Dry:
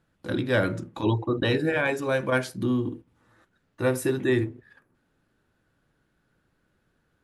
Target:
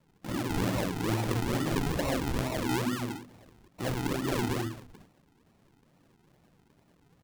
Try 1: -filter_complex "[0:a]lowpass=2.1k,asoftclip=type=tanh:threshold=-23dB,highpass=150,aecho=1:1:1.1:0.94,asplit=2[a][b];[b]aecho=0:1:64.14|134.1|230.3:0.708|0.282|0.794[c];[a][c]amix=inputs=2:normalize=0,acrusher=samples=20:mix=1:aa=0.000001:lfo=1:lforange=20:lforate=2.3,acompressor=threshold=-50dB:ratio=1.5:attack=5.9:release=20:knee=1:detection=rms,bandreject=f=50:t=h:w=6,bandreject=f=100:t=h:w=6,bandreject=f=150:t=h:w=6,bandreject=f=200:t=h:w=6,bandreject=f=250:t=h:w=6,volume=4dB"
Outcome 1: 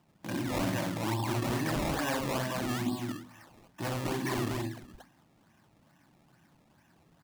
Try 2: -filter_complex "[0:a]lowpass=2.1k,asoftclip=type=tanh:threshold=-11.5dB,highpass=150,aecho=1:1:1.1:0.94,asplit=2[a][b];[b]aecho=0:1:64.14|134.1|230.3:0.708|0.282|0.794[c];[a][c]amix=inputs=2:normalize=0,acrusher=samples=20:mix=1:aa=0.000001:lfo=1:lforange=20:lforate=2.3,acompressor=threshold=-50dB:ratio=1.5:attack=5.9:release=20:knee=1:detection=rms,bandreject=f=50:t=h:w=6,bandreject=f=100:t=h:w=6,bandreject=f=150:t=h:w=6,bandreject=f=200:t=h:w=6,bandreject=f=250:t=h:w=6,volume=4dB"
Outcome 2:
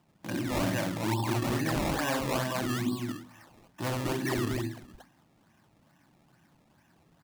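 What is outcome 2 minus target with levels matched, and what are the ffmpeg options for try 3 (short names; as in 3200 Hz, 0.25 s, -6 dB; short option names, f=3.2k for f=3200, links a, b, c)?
decimation with a swept rate: distortion -8 dB
-filter_complex "[0:a]lowpass=2.1k,asoftclip=type=tanh:threshold=-11.5dB,highpass=150,aecho=1:1:1.1:0.94,asplit=2[a][b];[b]aecho=0:1:64.14|134.1|230.3:0.708|0.282|0.794[c];[a][c]amix=inputs=2:normalize=0,acrusher=samples=53:mix=1:aa=0.000001:lfo=1:lforange=53:lforate=2.3,acompressor=threshold=-50dB:ratio=1.5:attack=5.9:release=20:knee=1:detection=rms,bandreject=f=50:t=h:w=6,bandreject=f=100:t=h:w=6,bandreject=f=150:t=h:w=6,bandreject=f=200:t=h:w=6,bandreject=f=250:t=h:w=6,volume=4dB"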